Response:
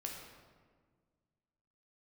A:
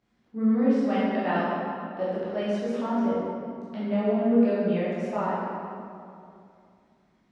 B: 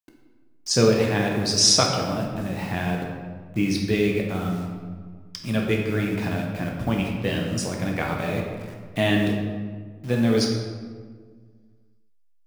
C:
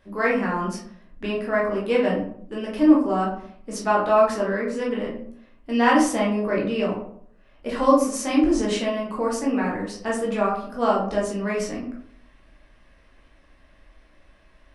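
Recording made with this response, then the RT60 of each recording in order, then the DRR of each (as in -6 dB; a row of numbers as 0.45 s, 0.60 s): B; 2.6 s, 1.6 s, 0.60 s; -10.5 dB, -0.5 dB, -5.0 dB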